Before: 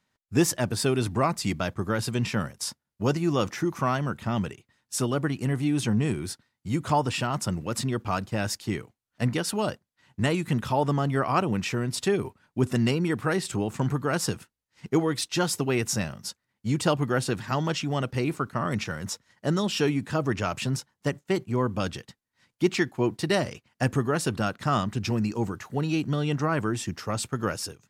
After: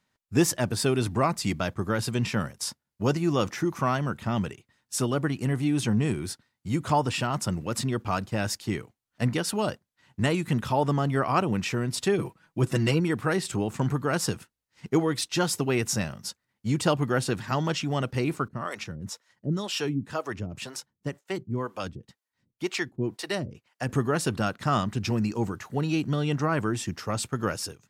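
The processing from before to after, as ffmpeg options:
-filter_complex "[0:a]asettb=1/sr,asplit=3[a][b][c];[a]atrim=end=12.184[d];[b]atrim=start=12.18:end=13,asetpts=PTS-STARTPTS,afade=t=in:d=0.004:c=qsin,afade=t=out:st=0.816:d=0.004:c=qsin,aecho=1:1:6.1:0.65,atrim=end_sample=36162[e];[c]atrim=start=12.996[f];[d][e]acrossfade=d=0.004:c1=hsin:c2=qsin[g];[g][f]acrossfade=d=0.004:c1=qsin:c2=hsin,asettb=1/sr,asplit=3[h][i][j];[h]atrim=end=18.484[k];[i]atrim=start=18.48:end=23.89,asetpts=PTS-STARTPTS,afade=t=in:d=0.004:c=qsin,afade=t=out:st=5.406:d=0.004:c=qsin,acrossover=split=410[l][m];[l]aeval=exprs='val(0)*(1-1/2+1/2*cos(2*PI*2*n/s))':c=same[n];[m]aeval=exprs='val(0)*(1-1/2-1/2*cos(2*PI*2*n/s))':c=same[o];[n][o]amix=inputs=2:normalize=0[p];[j]atrim=start=23.886[q];[k][p]acrossfade=d=0.004:c1=hsin:c2=qsin[r];[r][q]acrossfade=d=0.004:c1=qsin:c2=hsin"

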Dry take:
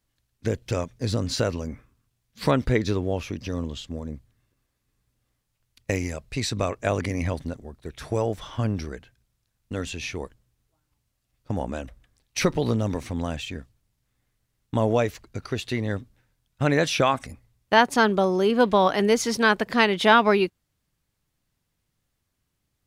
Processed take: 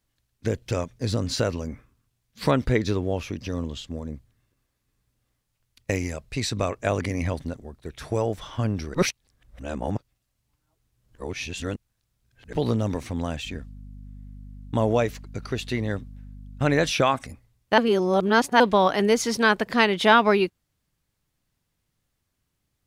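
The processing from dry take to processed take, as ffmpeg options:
-filter_complex "[0:a]asettb=1/sr,asplit=3[a][b][c];[a]atrim=end=13.454[d];[b]atrim=start=13.45:end=16.91,asetpts=PTS-STARTPTS,afade=t=in:d=0.004:c=qsin,afade=t=out:st=3.456:d=0.004:c=qsin,aeval=exprs='val(0)+0.01*(sin(2*PI*50*n/s)+sin(2*PI*2*50*n/s)/2+sin(2*PI*3*50*n/s)/3+sin(2*PI*4*50*n/s)/4+sin(2*PI*5*50*n/s)/5)':c=same[e];[c]atrim=start=16.906[f];[d][e]acrossfade=d=0.004:c1=hsin:c2=qsin[g];[g][f]acrossfade=d=0.004:c1=qsin:c2=hsin,asplit=5[h][i][j][k][l];[h]atrim=end=8.942[m];[i]atrim=start=8.938:end=12.532,asetpts=PTS-STARTPTS,areverse[n];[j]atrim=start=12.528:end=17.782[o];[k]atrim=start=17.778:end=18.602,asetpts=PTS-STARTPTS,areverse[p];[l]atrim=start=18.598[q];[m][n]acrossfade=d=0.004:c1=hsin:c2=hsin[r];[r][o]acrossfade=d=0.004:c1=hsin:c2=hsin[s];[s][p]acrossfade=d=0.004:c1=hsin:c2=hsin[t];[t][q]acrossfade=d=0.004:c1=hsin:c2=hsin"

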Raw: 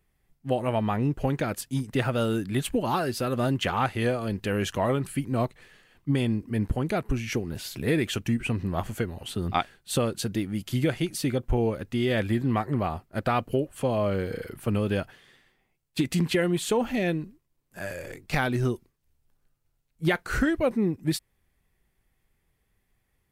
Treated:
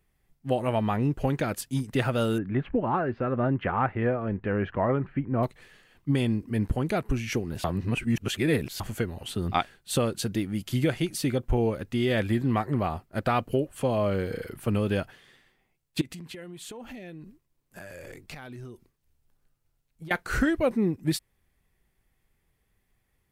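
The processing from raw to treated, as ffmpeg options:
-filter_complex "[0:a]asettb=1/sr,asplit=3[a][b][c];[a]atrim=end=2.384[d];[b]atrim=start=2.38:end=5.43,asetpts=PTS-STARTPTS,afade=t=in:d=0.004:c=qsin,afade=t=out:st=3.046:d=0.004:c=qsin,lowpass=f=2k:w=0.5412,lowpass=f=2k:w=1.3066[e];[c]atrim=start=5.426[f];[d][e]acrossfade=d=0.004:c1=hsin:c2=qsin[g];[g][f]acrossfade=d=0.004:c1=qsin:c2=hsin,asettb=1/sr,asplit=3[h][i][j];[h]atrim=end=16.014[k];[i]atrim=start=16.01:end=20.11,asetpts=PTS-STARTPTS,afade=t=in:d=0.004:c=qsin,afade=t=out:st=4.096:d=0.004:c=qsin,acompressor=threshold=-38dB:ratio=12:attack=3.2:release=140:knee=1:detection=peak[l];[j]atrim=start=20.106[m];[k][l]acrossfade=d=0.004:c1=hsin:c2=qsin[n];[n][m]acrossfade=d=0.004:c1=qsin:c2=hsin,asplit=3[o][p][q];[o]atrim=end=7.642[r];[p]atrim=start=7.638:end=8.802,asetpts=PTS-STARTPTS,areverse[s];[q]atrim=start=8.798[t];[r][s]acrossfade=d=0.004:c1=hsin:c2=hsin[u];[u][t]acrossfade=d=0.004:c1=hsin:c2=hsin"

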